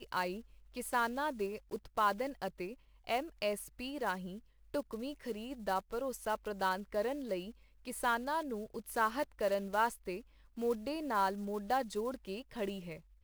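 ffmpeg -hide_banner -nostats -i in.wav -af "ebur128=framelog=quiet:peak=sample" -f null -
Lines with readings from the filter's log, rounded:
Integrated loudness:
  I:         -37.2 LUFS
  Threshold: -47.5 LUFS
Loudness range:
  LRA:         3.9 LU
  Threshold: -57.5 LUFS
  LRA low:   -39.9 LUFS
  LRA high:  -36.0 LUFS
Sample peak:
  Peak:      -19.3 dBFS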